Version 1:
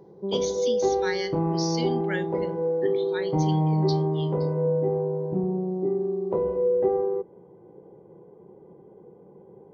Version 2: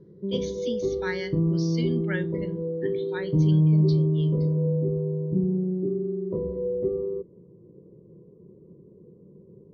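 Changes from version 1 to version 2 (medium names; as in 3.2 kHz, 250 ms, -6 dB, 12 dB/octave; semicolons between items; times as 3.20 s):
background: add boxcar filter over 55 samples; master: add tone controls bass +6 dB, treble -12 dB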